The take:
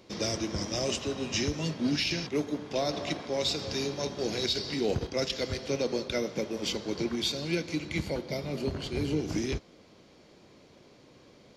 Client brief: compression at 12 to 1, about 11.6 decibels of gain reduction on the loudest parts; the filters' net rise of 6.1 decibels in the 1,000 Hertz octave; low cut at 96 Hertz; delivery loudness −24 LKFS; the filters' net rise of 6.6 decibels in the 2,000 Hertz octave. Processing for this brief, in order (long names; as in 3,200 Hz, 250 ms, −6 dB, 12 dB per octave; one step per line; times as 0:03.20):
high-pass filter 96 Hz
parametric band 1,000 Hz +7 dB
parametric band 2,000 Hz +6.5 dB
downward compressor 12 to 1, threshold −35 dBFS
level +15 dB